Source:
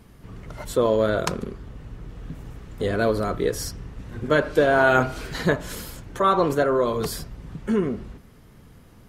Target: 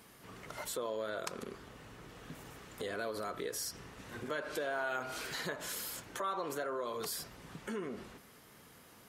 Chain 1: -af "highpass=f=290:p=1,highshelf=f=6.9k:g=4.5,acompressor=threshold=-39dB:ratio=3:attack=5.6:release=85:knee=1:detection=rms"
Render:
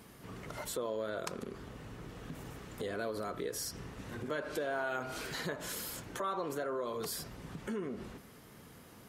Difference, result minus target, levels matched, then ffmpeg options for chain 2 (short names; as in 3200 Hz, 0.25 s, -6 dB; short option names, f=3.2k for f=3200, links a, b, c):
250 Hz band +3.5 dB
-af "highpass=f=730:p=1,highshelf=f=6.9k:g=4.5,acompressor=threshold=-39dB:ratio=3:attack=5.6:release=85:knee=1:detection=rms"